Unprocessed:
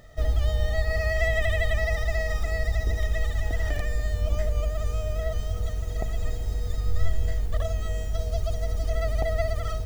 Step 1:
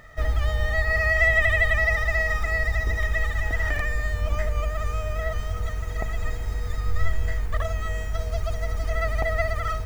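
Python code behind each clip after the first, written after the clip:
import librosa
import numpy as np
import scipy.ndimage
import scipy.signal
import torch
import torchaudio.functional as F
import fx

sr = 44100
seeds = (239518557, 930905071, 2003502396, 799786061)

y = fx.band_shelf(x, sr, hz=1500.0, db=9.5, octaves=1.7)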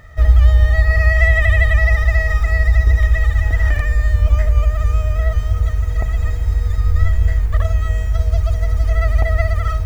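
y = fx.peak_eq(x, sr, hz=69.0, db=14.5, octaves=1.3)
y = y * librosa.db_to_amplitude(2.0)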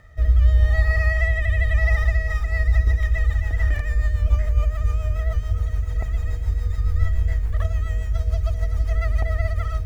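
y = fx.rotary_switch(x, sr, hz=0.85, then_hz=7.0, switch_at_s=1.87)
y = y * librosa.db_to_amplitude(-4.5)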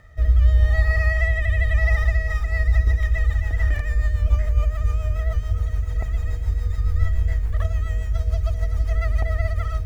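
y = x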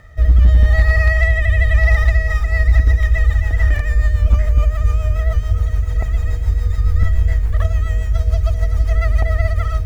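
y = np.clip(x, -10.0 ** (-10.5 / 20.0), 10.0 ** (-10.5 / 20.0))
y = y * librosa.db_to_amplitude(6.0)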